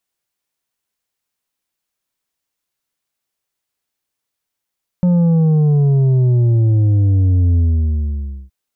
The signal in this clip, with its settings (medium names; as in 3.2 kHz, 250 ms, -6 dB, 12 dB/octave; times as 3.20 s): sub drop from 180 Hz, over 3.47 s, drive 6 dB, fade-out 0.93 s, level -10.5 dB